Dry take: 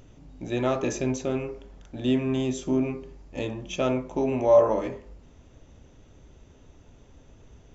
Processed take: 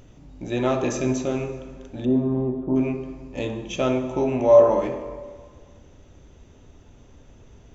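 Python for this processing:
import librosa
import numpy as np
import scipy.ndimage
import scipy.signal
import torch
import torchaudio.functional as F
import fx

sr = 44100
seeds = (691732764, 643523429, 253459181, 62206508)

y = fx.lowpass(x, sr, hz=1100.0, slope=24, at=(2.04, 2.75), fade=0.02)
y = fx.rev_plate(y, sr, seeds[0], rt60_s=1.8, hf_ratio=0.75, predelay_ms=0, drr_db=7.5)
y = y * 10.0 ** (2.0 / 20.0)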